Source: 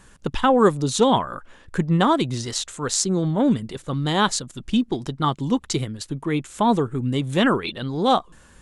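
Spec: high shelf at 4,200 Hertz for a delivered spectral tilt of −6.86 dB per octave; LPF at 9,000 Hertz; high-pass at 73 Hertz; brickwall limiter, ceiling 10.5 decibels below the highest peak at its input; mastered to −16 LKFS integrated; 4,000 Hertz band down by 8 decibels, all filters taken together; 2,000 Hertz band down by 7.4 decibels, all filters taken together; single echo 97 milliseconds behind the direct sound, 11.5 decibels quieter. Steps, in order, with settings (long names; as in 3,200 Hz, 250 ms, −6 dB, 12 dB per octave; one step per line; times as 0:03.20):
high-pass filter 73 Hz
low-pass filter 9,000 Hz
parametric band 2,000 Hz −9 dB
parametric band 4,000 Hz −4.5 dB
high-shelf EQ 4,200 Hz −4.5 dB
brickwall limiter −17.5 dBFS
single-tap delay 97 ms −11.5 dB
level +11 dB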